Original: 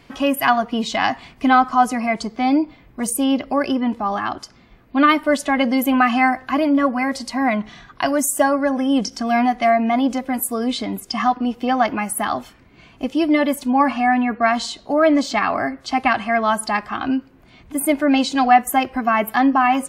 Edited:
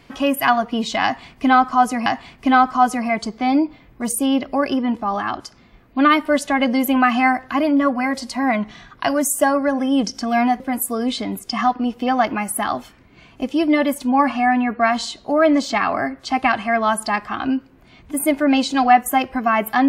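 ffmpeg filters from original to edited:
-filter_complex "[0:a]asplit=3[a][b][c];[a]atrim=end=2.062[d];[b]atrim=start=1.038:end=9.582[e];[c]atrim=start=10.208[f];[d][e]acrossfade=d=0.004:c1=hsin:c2=hsin[g];[g][f]acrossfade=d=0.004:c1=hsin:c2=hsin"

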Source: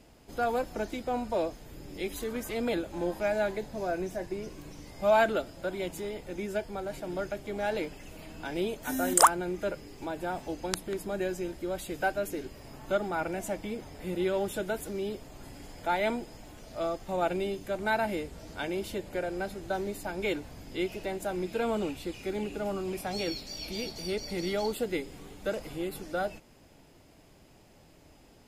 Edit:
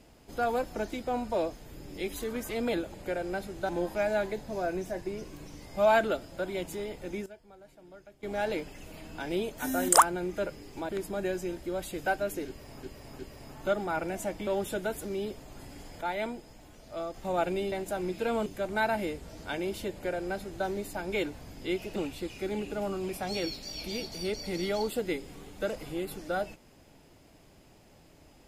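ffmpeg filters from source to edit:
-filter_complex "[0:a]asplit=14[a][b][c][d][e][f][g][h][i][j][k][l][m][n];[a]atrim=end=2.942[o];[b]atrim=start=19.008:end=19.762[p];[c]atrim=start=2.938:end=6.51,asetpts=PTS-STARTPTS,afade=t=out:st=3.372:d=0.2:c=log:silence=0.133352[q];[d]atrim=start=6.51:end=7.48,asetpts=PTS-STARTPTS,volume=-17.5dB[r];[e]atrim=start=7.48:end=10.142,asetpts=PTS-STARTPTS,afade=t=in:d=0.2:c=log:silence=0.133352[s];[f]atrim=start=10.848:end=12.792[t];[g]atrim=start=12.428:end=12.792[u];[h]atrim=start=12.428:end=13.712[v];[i]atrim=start=14.308:end=15.852[w];[j]atrim=start=15.848:end=16.982,asetpts=PTS-STARTPTS,volume=-4.5dB[x];[k]atrim=start=16.978:end=17.562[y];[l]atrim=start=21.058:end=21.802[z];[m]atrim=start=17.558:end=21.062[aa];[n]atrim=start=21.798[ab];[o][p]acrossfade=d=0.004:c1=hsin:c2=hsin[ac];[q][r][s]concat=n=3:v=0:a=1[ad];[ac][ad]acrossfade=d=0.004:c1=hsin:c2=hsin[ae];[ae][t]acrossfade=d=0.004:c1=hsin:c2=hsin[af];[af][u]acrossfade=d=0.004:c1=hsin:c2=hsin[ag];[ag][v]acrossfade=d=0.004:c1=hsin:c2=hsin[ah];[ah][w]acrossfade=d=0.004:c1=hsin:c2=hsin[ai];[ai][x]acrossfade=d=0.004:c1=hsin:c2=hsin[aj];[aj][y]acrossfade=d=0.004:c1=hsin:c2=hsin[ak];[ak][z]acrossfade=d=0.004:c1=hsin:c2=hsin[al];[al][aa]acrossfade=d=0.004:c1=hsin:c2=hsin[am];[am][ab]acrossfade=d=0.004:c1=hsin:c2=hsin"

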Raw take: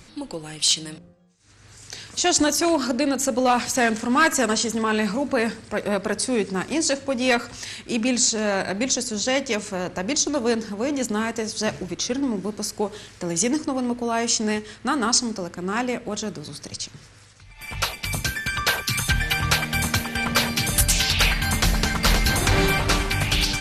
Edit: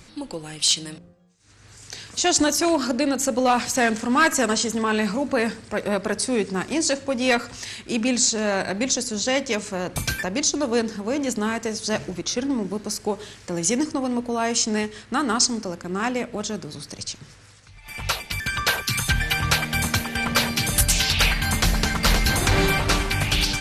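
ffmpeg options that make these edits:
-filter_complex "[0:a]asplit=4[a][b][c][d];[a]atrim=end=9.962[e];[b]atrim=start=18.128:end=18.402[f];[c]atrim=start=9.958:end=18.132[g];[d]atrim=start=18.398[h];[e][f]acrossfade=d=0.004:c1=hsin:c2=hsin[i];[i][g]acrossfade=d=0.004:c1=hsin:c2=hsin[j];[j][h]acrossfade=d=0.004:c1=hsin:c2=hsin"

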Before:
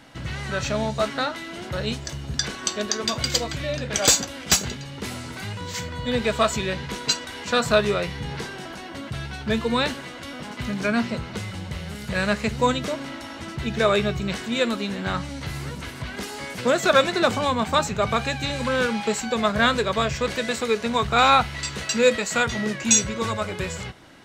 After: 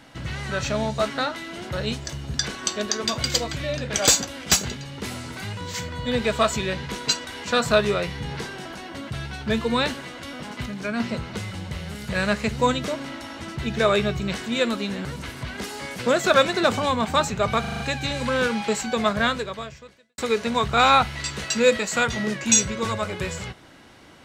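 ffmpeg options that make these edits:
-filter_complex "[0:a]asplit=10[a][b][c][d][e][f][g][h][i][j];[a]atrim=end=10.662[k];[b]atrim=start=10.658:end=11.002,asetpts=PTS-STARTPTS,volume=-5dB[l];[c]atrim=start=10.998:end=15.052[m];[d]atrim=start=15.638:end=18.232[n];[e]atrim=start=18.188:end=18.232[o];[f]atrim=start=18.188:end=18.232[p];[g]atrim=start=18.188:end=18.232[q];[h]atrim=start=18.188:end=18.232[r];[i]atrim=start=18.188:end=20.57,asetpts=PTS-STARTPTS,afade=t=out:st=1.302:d=1.08:c=qua[s];[j]atrim=start=20.57,asetpts=PTS-STARTPTS,afade=t=in:d=0.004:c=hsin[t];[k][l]acrossfade=d=0.004:c1=hsin:c2=hsin[u];[u][m]acrossfade=d=0.004:c1=hsin:c2=hsin[v];[v][n]acrossfade=d=0.004:c1=hsin:c2=hsin[w];[w][o]acrossfade=d=0.004:c1=hsin:c2=hsin[x];[x][p]acrossfade=d=0.004:c1=hsin:c2=hsin[y];[y][q]acrossfade=d=0.004:c1=hsin:c2=hsin[z];[z][r]acrossfade=d=0.004:c1=hsin:c2=hsin[aa];[s][t]concat=n=2:v=0:a=1[ab];[aa][ab]acrossfade=d=0.004:c1=hsin:c2=hsin"

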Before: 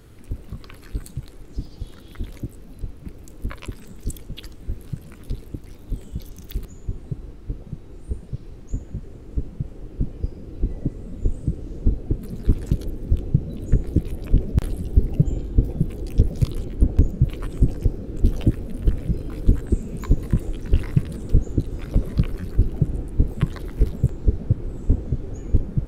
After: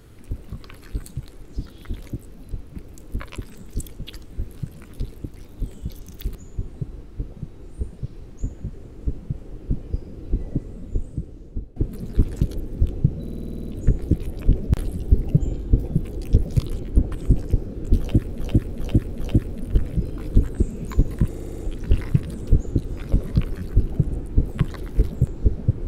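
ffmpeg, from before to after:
-filter_complex "[0:a]asplit=21[a][b][c][d][e][f][g][h][i][j][k][l][m][n][o][p][q][r][s][t][u];[a]atrim=end=1.662[v];[b]atrim=start=1.958:end=12.06,asetpts=PTS-STARTPTS,afade=t=out:st=8.902:d=1.2:silence=0.158489[w];[c]atrim=start=12.06:end=13.572,asetpts=PTS-STARTPTS,afade=t=in:d=0.004:c=hsin:silence=0.158489[x];[d]atrim=start=13.518:end=13.572[y];[e]atrim=start=13.518:end=13.572[z];[f]atrim=start=13.518:end=13.572[aa];[g]atrim=start=13.518:end=13.572[ab];[h]atrim=start=13.518:end=13.572[ac];[i]atrim=start=13.518:end=13.572[ad];[j]atrim=start=13.518:end=13.572[ae];[k]atrim=start=13.518:end=13.572[af];[l]atrim=start=13.518:end=16.972[ag];[m]atrim=start=17.438:end=18.712[ah];[n]atrim=start=18.308:end=18.712[ai];[o]atrim=start=18.308:end=18.712[aj];[p]atrim=start=18.308:end=20.462[ak];[q]atrim=start=20.398:end=20.462[al];[r]atrim=start=20.398:end=20.462[am];[s]atrim=start=20.398:end=20.462[an];[t]atrim=start=20.398:end=20.462[ao];[u]atrim=start=20.398[ap];[w][x]concat=n=2:v=0:a=1[aq];[v][aq]acrossfade=d=0.004:c1=hsin:c2=hsin[ar];[ar][y]acrossfade=d=0.004:c1=hsin:c2=hsin[as];[as][z]acrossfade=d=0.004:c1=hsin:c2=hsin[at];[at][aa]acrossfade=d=0.004:c1=hsin:c2=hsin[au];[au][ab]acrossfade=d=0.004:c1=hsin:c2=hsin[av];[av][ac]acrossfade=d=0.004:c1=hsin:c2=hsin[aw];[aw][ad]acrossfade=d=0.004:c1=hsin:c2=hsin[ax];[ax][ae]acrossfade=d=0.004:c1=hsin:c2=hsin[ay];[ay][af]acrossfade=d=0.004:c1=hsin:c2=hsin[az];[az][ag]acrossfade=d=0.004:c1=hsin:c2=hsin[ba];[ba][ah]acrossfade=d=0.004:c1=hsin:c2=hsin[bb];[bb][ai]acrossfade=d=0.004:c1=hsin:c2=hsin[bc];[bc][aj]acrossfade=d=0.004:c1=hsin:c2=hsin[bd];[bd][ak]acrossfade=d=0.004:c1=hsin:c2=hsin[be];[be][al]acrossfade=d=0.004:c1=hsin:c2=hsin[bf];[bf][am]acrossfade=d=0.004:c1=hsin:c2=hsin[bg];[bg][an]acrossfade=d=0.004:c1=hsin:c2=hsin[bh];[bh][ao]acrossfade=d=0.004:c1=hsin:c2=hsin[bi];[bi][ap]acrossfade=d=0.004:c1=hsin:c2=hsin"

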